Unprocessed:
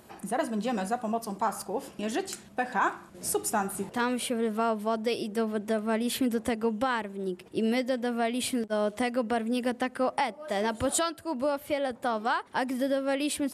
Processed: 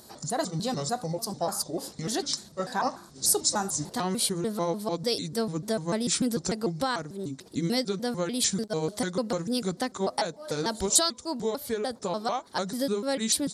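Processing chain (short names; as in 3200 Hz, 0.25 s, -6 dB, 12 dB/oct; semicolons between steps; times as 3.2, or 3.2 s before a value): trilling pitch shifter -5 st, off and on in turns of 0.148 s; resonant high shelf 3400 Hz +7.5 dB, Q 3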